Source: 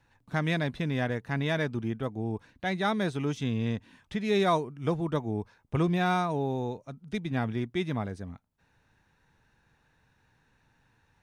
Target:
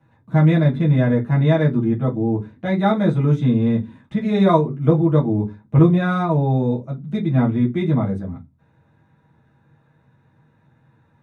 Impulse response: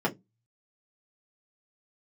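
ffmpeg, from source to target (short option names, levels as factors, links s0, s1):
-filter_complex "[1:a]atrim=start_sample=2205,asetrate=30870,aresample=44100[s0];[0:a][s0]afir=irnorm=-1:irlink=0,volume=0.501"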